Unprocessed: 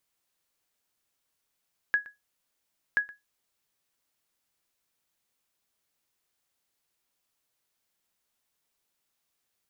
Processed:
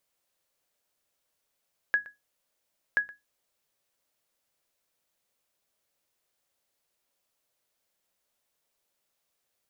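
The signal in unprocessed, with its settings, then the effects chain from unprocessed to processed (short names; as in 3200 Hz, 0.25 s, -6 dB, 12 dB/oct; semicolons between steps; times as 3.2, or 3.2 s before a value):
sonar ping 1670 Hz, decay 0.18 s, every 1.03 s, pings 2, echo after 0.12 s, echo -20.5 dB -16 dBFS
bell 570 Hz +7 dB 0.57 oct; notches 60/120/180/240/300 Hz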